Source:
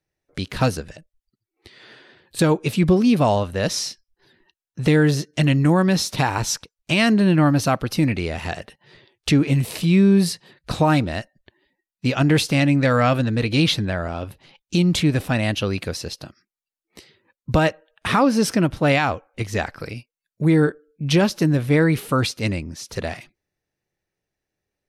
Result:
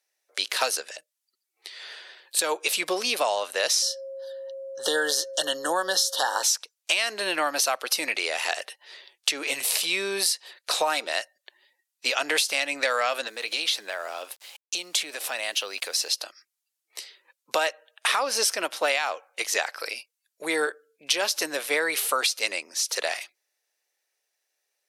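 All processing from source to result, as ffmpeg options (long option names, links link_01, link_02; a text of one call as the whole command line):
ffmpeg -i in.wav -filter_complex "[0:a]asettb=1/sr,asplit=3[link_01][link_02][link_03];[link_01]atrim=end=3.824[link_04];[link_02]atrim=start=3.82:end=6.43,asetpts=PTS-STARTPTS,afade=type=in:duration=0.004:curve=qsin,afade=type=out:start_time=2.606:duration=0.004:curve=qsin,aeval=exprs='val(0)+0.0224*sin(2*PI*540*n/s)':channel_layout=same,asuperstop=centerf=2300:order=20:qfactor=2.2[link_05];[link_03]atrim=start=6.426[link_06];[link_04][link_05]acrossfade=duration=0.004:curve1=hsin:curve2=qsin[link_07];[link_07][link_06]acrossfade=duration=0.004:curve1=qsin:curve2=hsin,asettb=1/sr,asplit=3[link_08][link_09][link_10];[link_08]atrim=end=13.274[link_11];[link_09]atrim=start=13.27:end=16.09,asetpts=PTS-STARTPTS,afade=type=in:duration=0.004:curve=qsin,afade=type=out:start_time=2.816:duration=0.004:curve=qsin,highpass=120,acompressor=threshold=-29dB:ratio=2.5:attack=3.2:release=140:knee=1:detection=peak,aeval=exprs='val(0)*gte(abs(val(0)),0.00237)':channel_layout=same[link_12];[link_10]atrim=start=16.086[link_13];[link_11][link_12]acrossfade=duration=0.004:curve1=hsin:curve2=qsin[link_14];[link_14][link_13]acrossfade=duration=0.004:curve1=qsin:curve2=hsin,highpass=frequency=500:width=0.5412,highpass=frequency=500:width=1.3066,equalizer=frequency=9900:width_type=o:width=3:gain=12,acompressor=threshold=-20dB:ratio=12" out.wav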